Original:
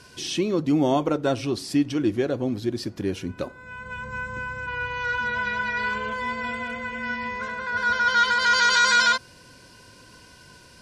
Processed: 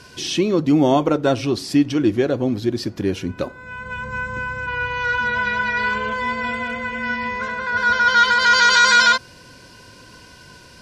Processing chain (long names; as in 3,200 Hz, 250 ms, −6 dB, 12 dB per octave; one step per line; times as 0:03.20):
parametric band 9,300 Hz −4.5 dB 0.63 octaves
level +5.5 dB